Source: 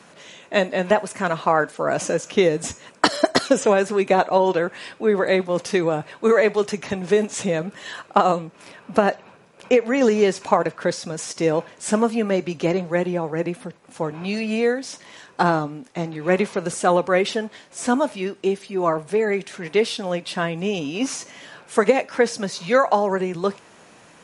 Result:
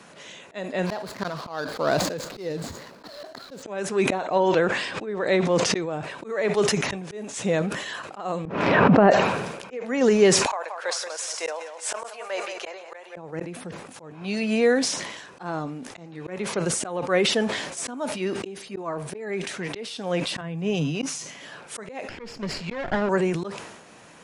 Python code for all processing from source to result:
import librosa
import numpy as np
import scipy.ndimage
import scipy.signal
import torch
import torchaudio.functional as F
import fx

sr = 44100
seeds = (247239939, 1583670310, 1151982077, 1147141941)

y = fx.chain(x, sr, fx.median_filter(points=15),
    fx.peak_eq(hz=4300.0, db=11.5, octaves=0.59), at=(0.86, 3.63))
y = fx.chain(y, sr, fx.lowpass(hz=8200.0, slope=24),
    fx.pre_swell(db_per_s=140.0), at=(4.23, 6.04))
y = fx.chain(y, sr, fx.highpass(hz=45.0, slope=12),
    fx.spacing_loss(db_at_10k=40),
    fx.env_flatten(amount_pct=100), at=(8.45, 9.11))
y = fx.chain(y, sr, fx.highpass(hz=600.0, slope=24),
    fx.echo_feedback(ms=179, feedback_pct=28, wet_db=-11.0), at=(10.46, 13.16))
y = fx.chain(y, sr, fx.peak_eq(hz=150.0, db=14.0, octaves=0.38),
    fx.band_widen(depth_pct=70), at=(20.41, 21.35))
y = fx.chain(y, sr, fx.lower_of_two(delay_ms=0.41),
    fx.air_absorb(metres=110.0), at=(22.09, 23.09))
y = fx.auto_swell(y, sr, attack_ms=456.0)
y = fx.sustainer(y, sr, db_per_s=48.0)